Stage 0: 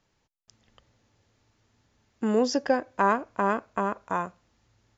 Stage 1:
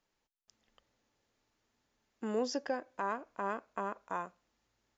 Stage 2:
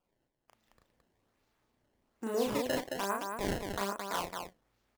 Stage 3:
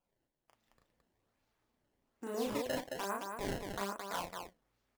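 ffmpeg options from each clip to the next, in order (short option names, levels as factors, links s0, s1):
-af "equalizer=f=95:w=0.92:g=-13,alimiter=limit=0.188:level=0:latency=1:release=202,volume=0.376"
-filter_complex "[0:a]acrusher=samples=21:mix=1:aa=0.000001:lfo=1:lforange=33.6:lforate=1.2,asplit=2[s0][s1];[s1]aecho=0:1:34.99|218.7:0.794|0.631[s2];[s0][s2]amix=inputs=2:normalize=0"
-af "flanger=delay=1.2:depth=6.3:regen=-61:speed=0.71:shape=sinusoidal"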